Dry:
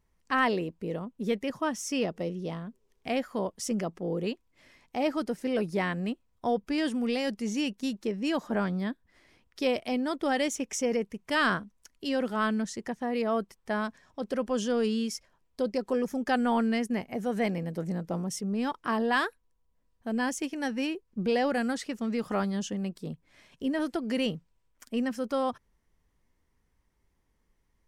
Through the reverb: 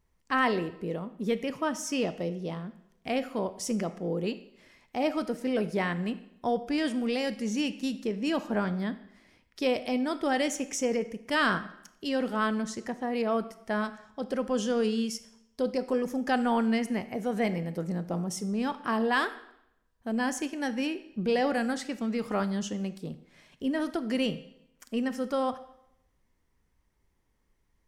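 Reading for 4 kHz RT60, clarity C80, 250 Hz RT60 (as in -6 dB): 0.70 s, 17.0 dB, 0.80 s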